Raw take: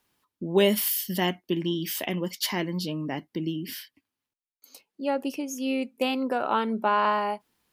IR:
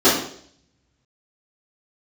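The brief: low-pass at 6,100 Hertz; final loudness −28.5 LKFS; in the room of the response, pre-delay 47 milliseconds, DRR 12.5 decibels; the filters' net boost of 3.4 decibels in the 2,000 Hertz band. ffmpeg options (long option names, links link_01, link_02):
-filter_complex "[0:a]lowpass=6100,equalizer=frequency=2000:width_type=o:gain=4.5,asplit=2[link_01][link_02];[1:a]atrim=start_sample=2205,adelay=47[link_03];[link_02][link_03]afir=irnorm=-1:irlink=0,volume=-36.5dB[link_04];[link_01][link_04]amix=inputs=2:normalize=0,volume=-2.5dB"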